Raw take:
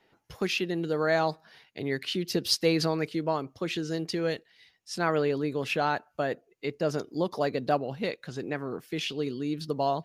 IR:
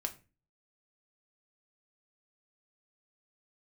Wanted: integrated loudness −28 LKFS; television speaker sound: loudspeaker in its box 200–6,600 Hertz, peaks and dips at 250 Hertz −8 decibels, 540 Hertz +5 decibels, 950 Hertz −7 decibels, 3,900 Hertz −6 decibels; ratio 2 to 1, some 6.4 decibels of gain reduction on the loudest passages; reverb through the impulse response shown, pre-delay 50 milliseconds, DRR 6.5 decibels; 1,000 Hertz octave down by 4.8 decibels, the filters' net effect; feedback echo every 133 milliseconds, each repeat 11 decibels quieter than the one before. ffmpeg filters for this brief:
-filter_complex "[0:a]equalizer=frequency=1000:width_type=o:gain=-5,acompressor=threshold=-32dB:ratio=2,aecho=1:1:133|266|399:0.282|0.0789|0.0221,asplit=2[link_01][link_02];[1:a]atrim=start_sample=2205,adelay=50[link_03];[link_02][link_03]afir=irnorm=-1:irlink=0,volume=-7dB[link_04];[link_01][link_04]amix=inputs=2:normalize=0,highpass=frequency=200:width=0.5412,highpass=frequency=200:width=1.3066,equalizer=frequency=250:width_type=q:width=4:gain=-8,equalizer=frequency=540:width_type=q:width=4:gain=5,equalizer=frequency=950:width_type=q:width=4:gain=-7,equalizer=frequency=3900:width_type=q:width=4:gain=-6,lowpass=frequency=6600:width=0.5412,lowpass=frequency=6600:width=1.3066,volume=6dB"

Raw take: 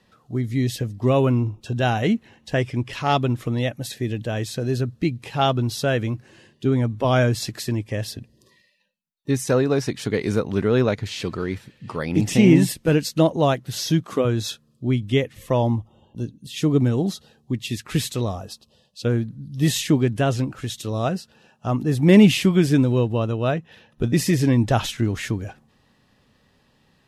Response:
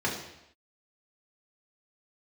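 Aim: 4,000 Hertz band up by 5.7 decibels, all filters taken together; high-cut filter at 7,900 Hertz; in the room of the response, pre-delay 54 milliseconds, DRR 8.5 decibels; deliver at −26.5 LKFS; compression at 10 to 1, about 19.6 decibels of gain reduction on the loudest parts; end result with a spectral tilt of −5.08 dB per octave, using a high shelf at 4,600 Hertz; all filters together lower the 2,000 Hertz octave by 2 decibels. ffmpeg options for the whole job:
-filter_complex "[0:a]lowpass=7900,equalizer=frequency=2000:width_type=o:gain=-6,equalizer=frequency=4000:width_type=o:gain=6,highshelf=frequency=4600:gain=6.5,acompressor=threshold=-28dB:ratio=10,asplit=2[link_01][link_02];[1:a]atrim=start_sample=2205,adelay=54[link_03];[link_02][link_03]afir=irnorm=-1:irlink=0,volume=-18.5dB[link_04];[link_01][link_04]amix=inputs=2:normalize=0,volume=5.5dB"

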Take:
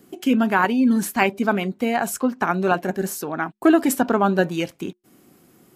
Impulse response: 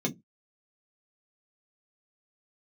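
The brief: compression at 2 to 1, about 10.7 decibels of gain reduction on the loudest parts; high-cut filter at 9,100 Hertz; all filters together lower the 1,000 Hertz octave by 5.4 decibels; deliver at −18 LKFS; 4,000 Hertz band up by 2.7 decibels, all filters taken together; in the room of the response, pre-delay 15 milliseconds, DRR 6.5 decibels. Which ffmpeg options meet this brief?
-filter_complex "[0:a]lowpass=9100,equalizer=frequency=1000:width_type=o:gain=-8,equalizer=frequency=4000:width_type=o:gain=5,acompressor=threshold=-32dB:ratio=2,asplit=2[link_01][link_02];[1:a]atrim=start_sample=2205,adelay=15[link_03];[link_02][link_03]afir=irnorm=-1:irlink=0,volume=-12.5dB[link_04];[link_01][link_04]amix=inputs=2:normalize=0,volume=6dB"

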